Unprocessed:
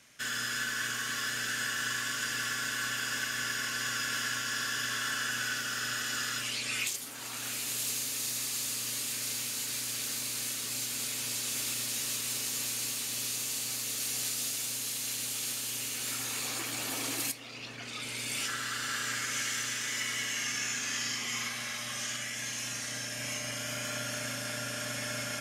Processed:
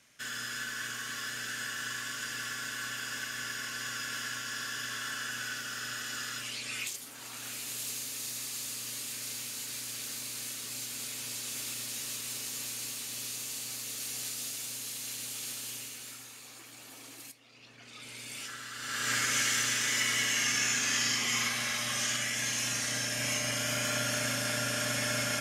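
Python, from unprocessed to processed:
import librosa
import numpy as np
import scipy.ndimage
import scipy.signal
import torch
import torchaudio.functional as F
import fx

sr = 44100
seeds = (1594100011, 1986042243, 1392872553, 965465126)

y = fx.gain(x, sr, db=fx.line((15.7, -4.0), (16.38, -14.5), (17.41, -14.5), (18.09, -7.5), (18.73, -7.5), (19.13, 4.5)))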